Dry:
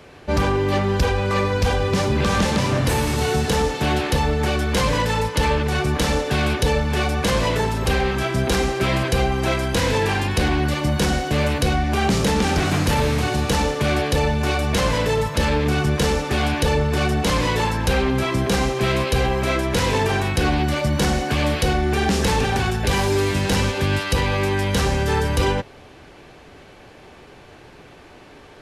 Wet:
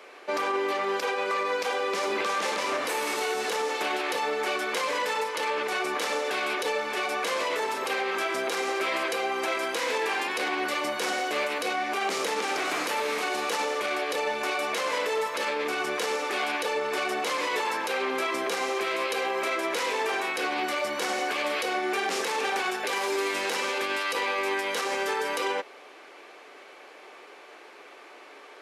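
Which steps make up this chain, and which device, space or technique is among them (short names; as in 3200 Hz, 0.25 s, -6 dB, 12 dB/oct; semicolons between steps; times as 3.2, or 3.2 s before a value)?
laptop speaker (HPF 360 Hz 24 dB/oct; bell 1200 Hz +5 dB 0.38 oct; bell 2200 Hz +5 dB 0.38 oct; limiter -16.5 dBFS, peak gain reduction 8 dB); gain -3 dB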